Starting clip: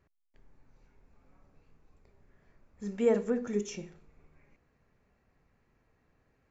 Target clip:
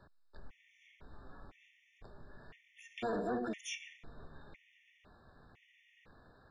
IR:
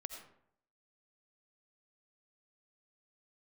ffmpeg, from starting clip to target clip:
-filter_complex "[0:a]asplit=2[s0][s1];[s1]asetrate=66075,aresample=44100,atempo=0.66742,volume=0.708[s2];[s0][s2]amix=inputs=2:normalize=0,asplit=2[s3][s4];[s4]acompressor=threshold=0.00501:ratio=6,volume=0.794[s5];[s3][s5]amix=inputs=2:normalize=0,tiltshelf=f=1200:g=-5,acrossover=split=150|1500[s6][s7][s8];[s7]asoftclip=type=hard:threshold=0.0282[s9];[s6][s9][s8]amix=inputs=3:normalize=0,lowpass=3300,alimiter=level_in=4.22:limit=0.0631:level=0:latency=1:release=38,volume=0.237,afftfilt=real='re*gt(sin(2*PI*0.99*pts/sr)*(1-2*mod(floor(b*sr/1024/1800),2)),0)':imag='im*gt(sin(2*PI*0.99*pts/sr)*(1-2*mod(floor(b*sr/1024/1800),2)),0)':win_size=1024:overlap=0.75,volume=2.11"

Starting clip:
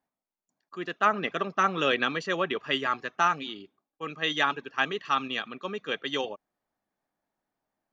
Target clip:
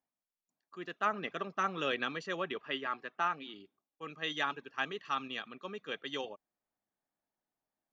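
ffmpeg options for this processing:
-filter_complex "[0:a]asettb=1/sr,asplit=3[s0][s1][s2];[s0]atrim=end=2.604[s3];[s1]atrim=start=2.6:end=3.54,asetpts=PTS-STARTPTS,afade=t=in:d=0.004:c=qsin,afade=t=out:st=0.936:d=0.004:c=qsin,highpass=170,lowpass=3800[s4];[s2]atrim=start=3.536[s5];[s3][s4]acrossfade=d=0.004:c1=hsin:c2=qsin[s6];[s6][s5]acrossfade=d=0.004:c1=qsin:c2=hsin,volume=0.376"

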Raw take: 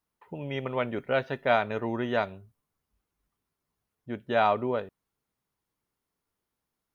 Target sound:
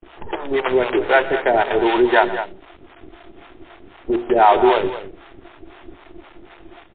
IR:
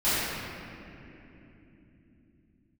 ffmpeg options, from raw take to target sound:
-filter_complex "[0:a]aeval=exprs='val(0)+0.5*0.0168*sgn(val(0))':c=same,afwtdn=0.0141,highpass=f=350:w=0.5412,highpass=f=350:w=1.3066,equalizer=f=350:t=q:w=4:g=10,equalizer=f=550:t=q:w=4:g=-6,equalizer=f=860:t=q:w=4:g=6,equalizer=f=1200:t=q:w=4:g=-9,equalizer=f=1800:t=q:w=4:g=3,lowpass=f=2000:w=0.5412,lowpass=f=2000:w=1.3066,agate=range=0.0224:threshold=0.00112:ratio=3:detection=peak,asplit=2[s0][s1];[s1]acompressor=threshold=0.00891:ratio=8,volume=0.891[s2];[s0][s2]amix=inputs=2:normalize=0,acrusher=bits=6:dc=4:mix=0:aa=0.000001,acrossover=split=520[s3][s4];[s3]aeval=exprs='val(0)*(1-1/2+1/2*cos(2*PI*3.9*n/s))':c=same[s5];[s4]aeval=exprs='val(0)*(1-1/2-1/2*cos(2*PI*3.9*n/s))':c=same[s6];[s5][s6]amix=inputs=2:normalize=0,bandreject=f=60:t=h:w=6,bandreject=f=120:t=h:w=6,bandreject=f=180:t=h:w=6,bandreject=f=240:t=h:w=6,bandreject=f=300:t=h:w=6,bandreject=f=360:t=h:w=6,bandreject=f=420:t=h:w=6,bandreject=f=480:t=h:w=6,bandreject=f=540:t=h:w=6,bandreject=f=600:t=h:w=6,asplit=2[s7][s8];[s8]aecho=0:1:122|207:0.126|0.251[s9];[s7][s9]amix=inputs=2:normalize=0,alimiter=level_in=6.68:limit=0.891:release=50:level=0:latency=1" -ar 8000 -c:a libmp3lame -b:a 24k

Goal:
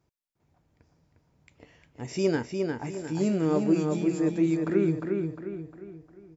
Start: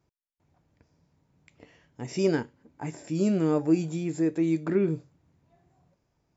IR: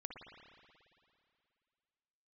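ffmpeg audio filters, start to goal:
-filter_complex "[0:a]asubboost=boost=3:cutoff=89,asplit=2[s0][s1];[s1]adelay=354,lowpass=f=4500:p=1,volume=0.631,asplit=2[s2][s3];[s3]adelay=354,lowpass=f=4500:p=1,volume=0.43,asplit=2[s4][s5];[s5]adelay=354,lowpass=f=4500:p=1,volume=0.43,asplit=2[s6][s7];[s7]adelay=354,lowpass=f=4500:p=1,volume=0.43,asplit=2[s8][s9];[s9]adelay=354,lowpass=f=4500:p=1,volume=0.43[s10];[s2][s4][s6][s8][s10]amix=inputs=5:normalize=0[s11];[s0][s11]amix=inputs=2:normalize=0"

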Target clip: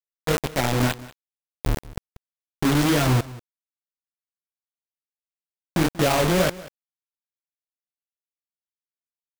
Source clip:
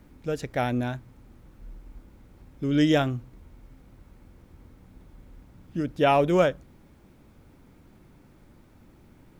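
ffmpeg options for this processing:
-filter_complex "[0:a]lowshelf=f=95:g=8.5,acrossover=split=270|1000[s0][s1][s2];[s0]dynaudnorm=f=440:g=7:m=1.41[s3];[s3][s1][s2]amix=inputs=3:normalize=0,alimiter=limit=0.133:level=0:latency=1:release=223,flanger=delay=20:depth=6.7:speed=2,acrusher=bits=4:mix=0:aa=0.000001,aecho=1:1:187:0.112,volume=2.51"

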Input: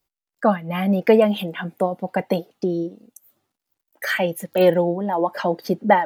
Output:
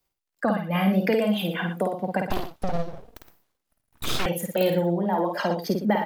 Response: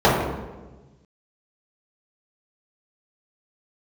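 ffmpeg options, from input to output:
-filter_complex "[0:a]acrossover=split=170|3000[s0][s1][s2];[s1]acompressor=threshold=0.0708:ratio=6[s3];[s0][s3][s2]amix=inputs=3:normalize=0,aecho=1:1:52.48|116.6:0.631|0.282,asettb=1/sr,asplit=3[s4][s5][s6];[s4]atrim=end=2.304[s7];[s5]atrim=start=2.3:end=4.26,asetpts=PTS-STARTPTS,afade=t=in:d=0.004:c=qsin,afade=t=out:st=1.956:d=0.004:c=qsin,aeval=exprs='abs(val(0))':c=same[s8];[s6]atrim=start=4.256[s9];[s7][s8]acrossfade=d=0.004:c1=hsin:c2=qsin[s10];[s10][s9]acrossfade=d=0.004:c1=qsin:c2=hsin"

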